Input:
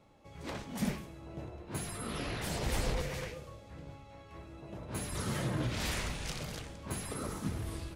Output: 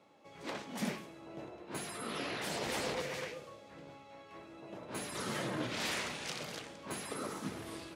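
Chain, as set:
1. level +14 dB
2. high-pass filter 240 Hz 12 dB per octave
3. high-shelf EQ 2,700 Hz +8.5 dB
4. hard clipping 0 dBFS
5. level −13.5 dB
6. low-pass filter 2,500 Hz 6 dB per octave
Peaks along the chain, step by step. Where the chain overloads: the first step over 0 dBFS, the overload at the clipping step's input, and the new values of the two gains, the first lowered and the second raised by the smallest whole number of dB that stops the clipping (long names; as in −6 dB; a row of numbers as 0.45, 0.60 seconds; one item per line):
−7.5, −10.0, −6.0, −6.0, −19.5, −23.5 dBFS
no step passes full scale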